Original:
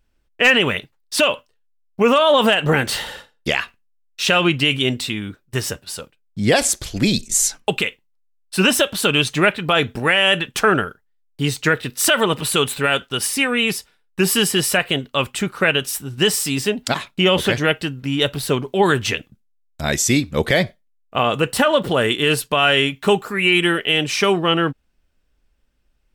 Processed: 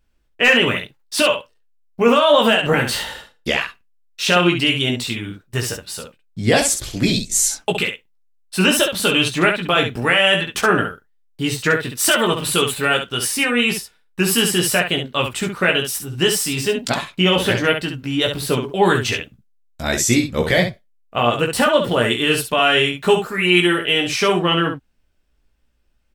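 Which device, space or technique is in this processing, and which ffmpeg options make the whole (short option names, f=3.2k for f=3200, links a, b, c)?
slapback doubling: -filter_complex "[0:a]asplit=3[a][b][c];[b]adelay=17,volume=-4dB[d];[c]adelay=67,volume=-6.5dB[e];[a][d][e]amix=inputs=3:normalize=0,volume=-1.5dB"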